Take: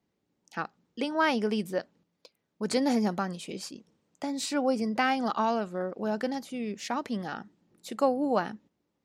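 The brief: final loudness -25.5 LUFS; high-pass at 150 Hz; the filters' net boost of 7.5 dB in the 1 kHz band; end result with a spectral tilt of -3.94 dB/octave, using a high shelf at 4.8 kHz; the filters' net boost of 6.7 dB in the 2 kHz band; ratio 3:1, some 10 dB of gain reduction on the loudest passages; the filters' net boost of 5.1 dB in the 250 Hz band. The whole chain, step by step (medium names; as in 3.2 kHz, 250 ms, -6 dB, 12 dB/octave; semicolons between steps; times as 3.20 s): high-pass 150 Hz; peaking EQ 250 Hz +6 dB; peaking EQ 1 kHz +8 dB; peaking EQ 2 kHz +4.5 dB; treble shelf 4.8 kHz +7 dB; compression 3:1, threshold -27 dBFS; trim +5.5 dB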